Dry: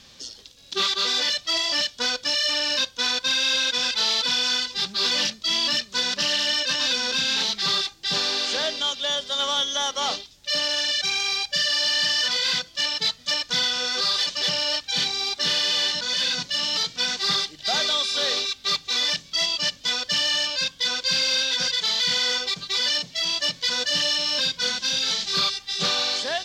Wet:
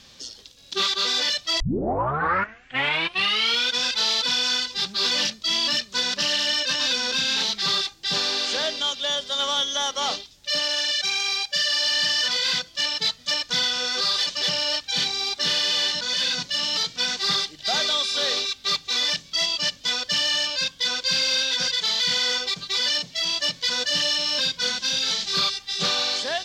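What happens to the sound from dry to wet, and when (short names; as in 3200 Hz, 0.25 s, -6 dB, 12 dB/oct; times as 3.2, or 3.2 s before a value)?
1.6 tape start 2.17 s
10.59–11.92 low shelf 170 Hz -10.5 dB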